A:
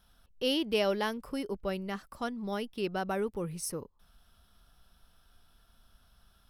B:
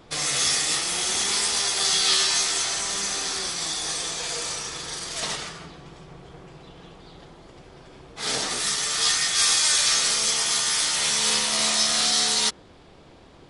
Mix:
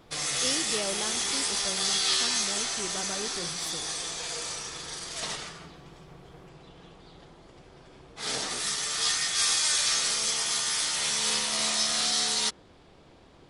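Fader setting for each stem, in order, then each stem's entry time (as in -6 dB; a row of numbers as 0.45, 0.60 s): -6.0, -5.0 dB; 0.00, 0.00 s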